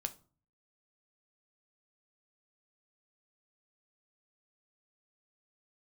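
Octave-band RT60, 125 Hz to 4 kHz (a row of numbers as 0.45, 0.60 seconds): 0.70, 0.55, 0.40, 0.40, 0.30, 0.25 seconds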